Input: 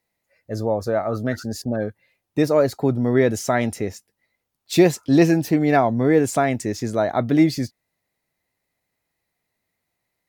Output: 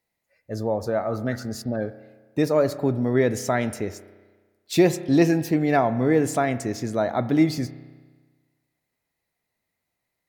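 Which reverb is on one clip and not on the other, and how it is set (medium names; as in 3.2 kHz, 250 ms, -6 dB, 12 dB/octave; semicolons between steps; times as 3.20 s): spring tank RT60 1.4 s, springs 32 ms, chirp 60 ms, DRR 13 dB; trim -3 dB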